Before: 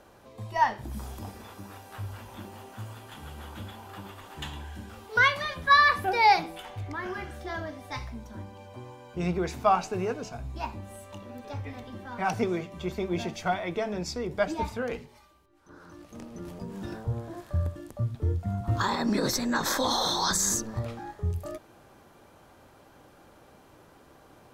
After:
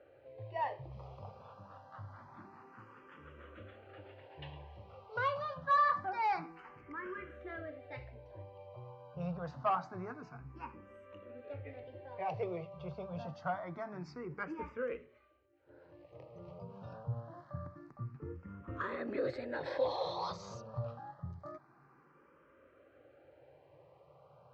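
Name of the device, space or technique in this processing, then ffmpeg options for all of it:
barber-pole phaser into a guitar amplifier: -filter_complex "[0:a]asplit=2[a][b];[b]afreqshift=0.26[c];[a][c]amix=inputs=2:normalize=1,asoftclip=type=tanh:threshold=-20.5dB,highpass=84,equalizer=f=140:t=q:w=4:g=10,equalizer=f=210:t=q:w=4:g=-8,equalizer=f=540:t=q:w=4:g=10,equalizer=f=1.2k:t=q:w=4:g=6,equalizer=f=3.5k:t=q:w=4:g=-10,lowpass=f=3.8k:w=0.5412,lowpass=f=3.8k:w=1.3066,volume=-8dB"

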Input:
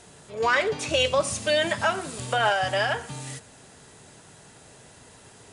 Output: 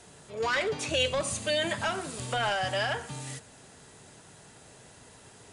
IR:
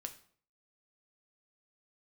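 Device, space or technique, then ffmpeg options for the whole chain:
one-band saturation: -filter_complex "[0:a]acrossover=split=330|2300[a][b][c];[b]asoftclip=type=tanh:threshold=-24dB[d];[a][d][c]amix=inputs=3:normalize=0,asettb=1/sr,asplit=3[e][f][g];[e]atrim=end=0.894[h];[f]atrim=start=0.89:end=1.85,asetpts=PTS-STARTPTS,afade=t=in:d=0.004:c=qsin,afade=t=out:st=0.956:d=0.004:c=qsin,bandreject=f=5.4k:w=6.3[i];[g]atrim=start=1.846[j];[h][i]acrossfade=d=0.004:c1=hsin:c2=qsin[k];[k][j]acrossfade=d=0.004:c1=qsin:c2=hsin,volume=-2.5dB"

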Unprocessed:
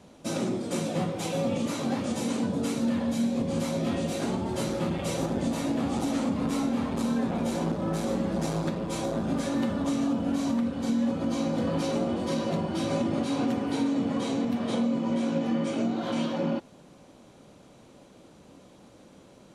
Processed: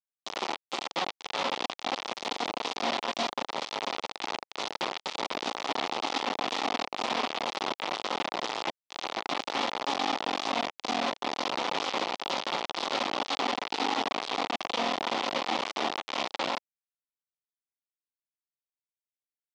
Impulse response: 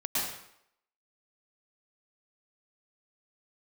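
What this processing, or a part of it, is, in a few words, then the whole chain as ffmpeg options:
hand-held game console: -filter_complex "[0:a]asettb=1/sr,asplit=3[a][b][c];[a]atrim=end=3.234[d];[b]atrim=start=3.23:end=4.62,asetpts=PTS-STARTPTS,afade=t=in:d=0.004:c=qsin,afade=t=out:st=1.386:d=0.004:c=qsin,equalizer=f=210:t=o:w=0.3:g=-3[e];[c]atrim=start=4.616[f];[d][e]acrossfade=d=0.004:c1=hsin:c2=qsin[g];[g][f]acrossfade=d=0.004:c1=qsin:c2=hsin,acrusher=bits=3:mix=0:aa=0.000001,highpass=480,equalizer=f=560:t=q:w=4:g=-4,equalizer=f=830:t=q:w=4:g=3,equalizer=f=1.6k:t=q:w=4:g=-8,equalizer=f=3.4k:t=q:w=4:g=3,lowpass=f=5.1k:w=0.5412,lowpass=f=5.1k:w=1.3066"

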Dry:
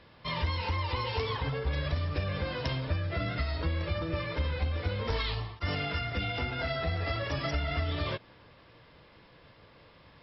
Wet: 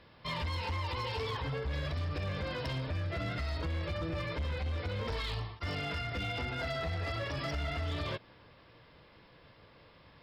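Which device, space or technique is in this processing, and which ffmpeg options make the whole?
limiter into clipper: -filter_complex "[0:a]asettb=1/sr,asplit=3[a][b][c];[a]atrim=end=4.014[d];[b]atrim=start=4.01:end=4.44,asetpts=PTS-STARTPTS,afade=t=in:d=0.004:c=qsin,afade=t=out:st=0.426:d=0.004:c=qsin,lowshelf=f=88:g=5[e];[c]atrim=start=4.436[f];[d][e]acrossfade=d=0.004:c1=hsin:c2=qsin[g];[g][f]acrossfade=d=0.004:c1=qsin:c2=hsin,alimiter=level_in=0.5dB:limit=-24dB:level=0:latency=1:release=40,volume=-0.5dB,asoftclip=type=hard:threshold=-28.5dB,volume=-2dB"

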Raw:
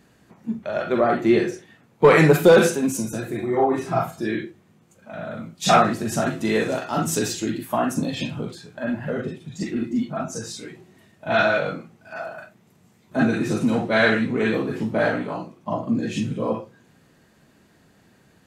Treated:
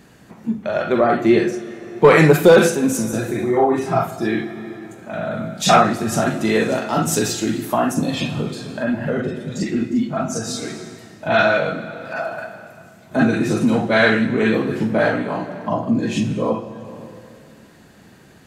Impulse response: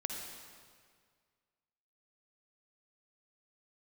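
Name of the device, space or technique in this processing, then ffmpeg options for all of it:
ducked reverb: -filter_complex "[0:a]asplit=3[a][b][c];[1:a]atrim=start_sample=2205[d];[b][d]afir=irnorm=-1:irlink=0[e];[c]apad=whole_len=814279[f];[e][f]sidechaincompress=threshold=-29dB:ratio=8:attack=5.9:release=630,volume=1.5dB[g];[a][g]amix=inputs=2:normalize=0,volume=2dB"

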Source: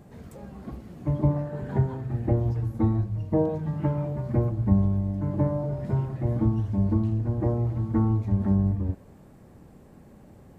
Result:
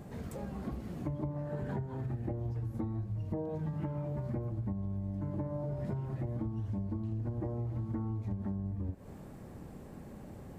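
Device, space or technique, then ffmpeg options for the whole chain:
serial compression, peaks first: -af "acompressor=threshold=-31dB:ratio=4,acompressor=threshold=-38dB:ratio=2.5,volume=2.5dB"

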